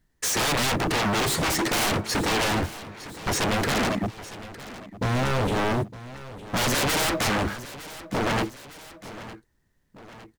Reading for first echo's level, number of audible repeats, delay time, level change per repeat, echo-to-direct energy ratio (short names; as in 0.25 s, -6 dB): -16.0 dB, 2, 0.909 s, -5.0 dB, -15.0 dB